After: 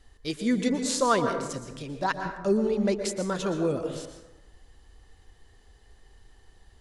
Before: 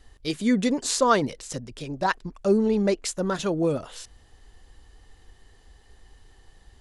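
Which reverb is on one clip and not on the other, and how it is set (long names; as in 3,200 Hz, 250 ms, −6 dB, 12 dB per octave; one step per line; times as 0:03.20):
dense smooth reverb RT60 1 s, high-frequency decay 0.45×, pre-delay 105 ms, DRR 6 dB
level −3.5 dB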